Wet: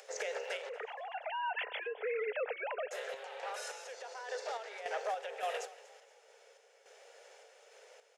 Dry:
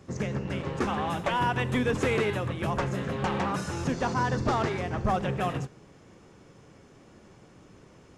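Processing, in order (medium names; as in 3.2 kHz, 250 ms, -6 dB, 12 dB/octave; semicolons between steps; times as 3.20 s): 0.69–2.91 s: formants replaced by sine waves; steep high-pass 440 Hz 96 dB/octave; peaking EQ 1.1 kHz -14 dB 0.4 oct; compression, threshold -32 dBFS, peak gain reduction 12.5 dB; peak limiter -30.5 dBFS, peak gain reduction 8 dB; upward compressor, threshold -57 dBFS; random-step tremolo, depth 70%; frequency-shifting echo 237 ms, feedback 38%, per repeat +39 Hz, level -19.5 dB; trim +3.5 dB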